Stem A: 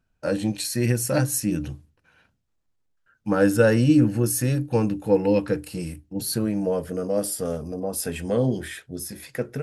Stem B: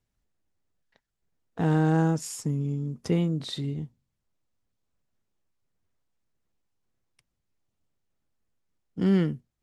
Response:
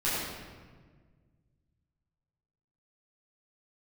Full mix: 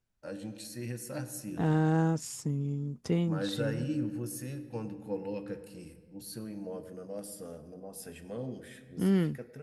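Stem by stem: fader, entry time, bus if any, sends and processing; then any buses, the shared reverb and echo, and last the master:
−17.0 dB, 0.00 s, send −19.5 dB, parametric band 73 Hz −4.5 dB 1.2 octaves
−4.0 dB, 0.00 s, no send, no processing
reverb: on, RT60 1.5 s, pre-delay 8 ms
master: no processing

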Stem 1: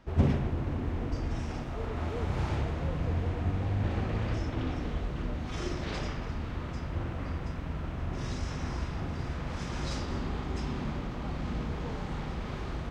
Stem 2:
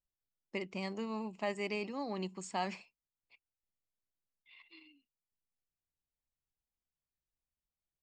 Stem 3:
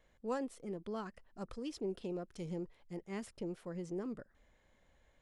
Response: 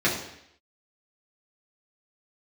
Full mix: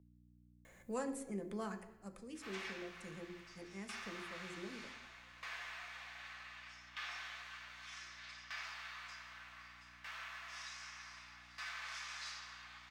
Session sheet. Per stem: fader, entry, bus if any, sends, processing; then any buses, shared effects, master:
−9.0 dB, 2.35 s, send −7 dB, high-pass filter 1,100 Hz 24 dB per octave; tremolo with a ramp in dB decaying 0.65 Hz, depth 21 dB
muted
0:01.74 −1.5 dB → 0:02.04 −12 dB, 0.65 s, send −18 dB, flat-topped bell 4,000 Hz −9.5 dB 1.2 octaves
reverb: on, RT60 0.75 s, pre-delay 3 ms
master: high-shelf EQ 2,400 Hz +10 dB; mains hum 60 Hz, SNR 23 dB; multiband upward and downward compressor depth 40%

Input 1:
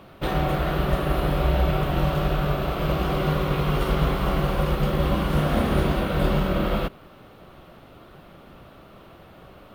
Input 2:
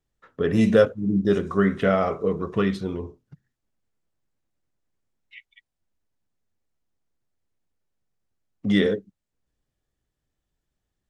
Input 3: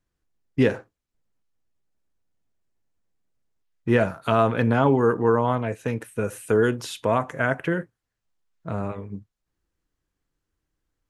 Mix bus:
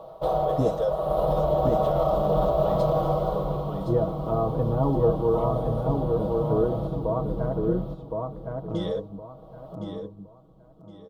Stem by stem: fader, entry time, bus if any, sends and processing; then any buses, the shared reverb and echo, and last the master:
+0.5 dB, 0.00 s, bus A, no send, echo send −18.5 dB, tilt shelving filter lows +8.5 dB; automatic ducking −14 dB, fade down 1.05 s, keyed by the third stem
−6.0 dB, 0.05 s, bus A, no send, echo send −9 dB, brickwall limiter −13.5 dBFS, peak gain reduction 8 dB
−5.0 dB, 0.00 s, no bus, no send, echo send −3.5 dB, Bessel low-pass filter 740 Hz, order 2
bus A: 0.0 dB, low shelf with overshoot 400 Hz −13 dB, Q 3; brickwall limiter −16 dBFS, peak gain reduction 8.5 dB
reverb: not used
echo: repeating echo 1,065 ms, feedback 26%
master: flat-topped bell 2,000 Hz −15.5 dB 1.1 octaves; comb filter 6.3 ms

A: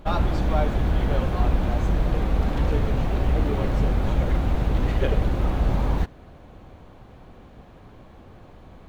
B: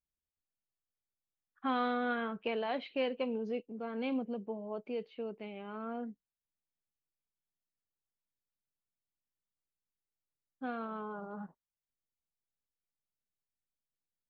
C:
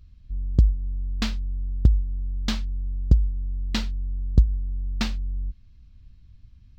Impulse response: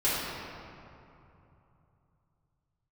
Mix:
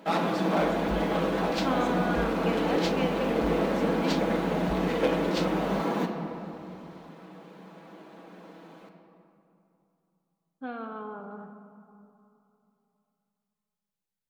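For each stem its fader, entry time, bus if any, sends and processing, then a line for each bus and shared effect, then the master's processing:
−0.5 dB, 0.00 s, send −13.5 dB, lower of the sound and its delayed copy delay 6.1 ms; elliptic high-pass filter 180 Hz
+0.5 dB, 0.00 s, send −18 dB, no processing
−4.0 dB, 0.30 s, no send, high-pass filter 84 Hz 12 dB per octave; tilt shelving filter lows −8.5 dB, about 670 Hz; compressor whose output falls as the input rises −30 dBFS, ratio −0.5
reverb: on, RT60 2.9 s, pre-delay 4 ms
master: no processing

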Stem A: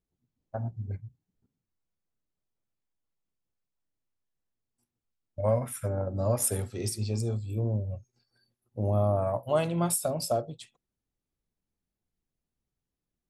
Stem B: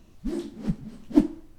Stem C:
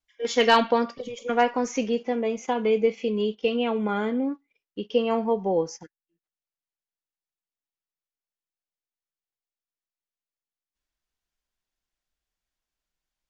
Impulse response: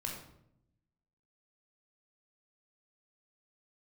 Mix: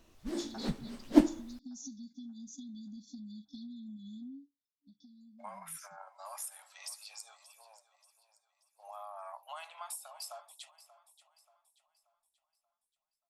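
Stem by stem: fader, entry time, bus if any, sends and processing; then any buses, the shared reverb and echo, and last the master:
−7.5 dB, 0.00 s, no send, echo send −16.5 dB, Butterworth high-pass 780 Hz 48 dB per octave; downward expander −56 dBFS; downward compressor 4 to 1, threshold −40 dBFS, peak gain reduction 14 dB
−2.5 dB, 0.00 s, no send, no echo send, parametric band 180 Hz −6.5 dB
0:04.28 −7.5 dB → 0:04.67 −19 dB, 0.10 s, no send, no echo send, hum removal 64.64 Hz, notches 2; brick-wall band-stop 290–3,400 Hz; downward compressor 8 to 1, threshold −37 dBFS, peak gain reduction 14 dB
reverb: not used
echo: repeating echo 582 ms, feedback 42%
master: low-shelf EQ 270 Hz −9.5 dB; automatic gain control gain up to 5.5 dB

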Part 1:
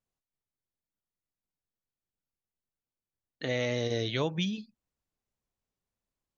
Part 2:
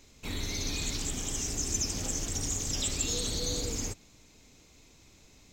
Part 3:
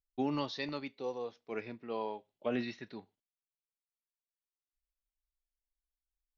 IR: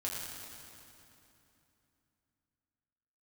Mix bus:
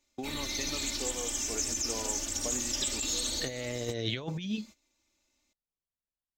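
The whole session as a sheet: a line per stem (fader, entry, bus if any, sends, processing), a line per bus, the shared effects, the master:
+2.5 dB, 0.00 s, no send, no processing
−3.0 dB, 0.00 s, no send, low-shelf EQ 280 Hz −11.5 dB; comb filter 3.4 ms, depth 91%
0.0 dB, 0.00 s, no send, downward compressor, threshold −38 dBFS, peak gain reduction 9 dB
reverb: not used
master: noise gate −49 dBFS, range −17 dB; compressor whose output falls as the input rises −31 dBFS, ratio −0.5

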